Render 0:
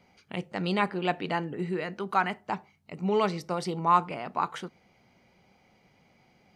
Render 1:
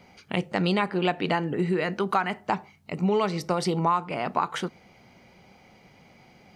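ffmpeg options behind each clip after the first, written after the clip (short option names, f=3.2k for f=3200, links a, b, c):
-af "acompressor=threshold=-29dB:ratio=6,volume=8.5dB"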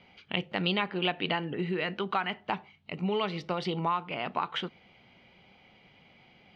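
-af "lowpass=f=3.2k:t=q:w=3.2,volume=-6.5dB"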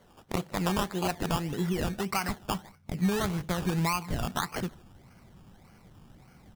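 -filter_complex "[0:a]asplit=2[a][b];[b]adelay=150,highpass=300,lowpass=3.4k,asoftclip=type=hard:threshold=-20.5dB,volume=-22dB[c];[a][c]amix=inputs=2:normalize=0,acrusher=samples=17:mix=1:aa=0.000001:lfo=1:lforange=10.2:lforate=1.7,asubboost=boost=3.5:cutoff=230"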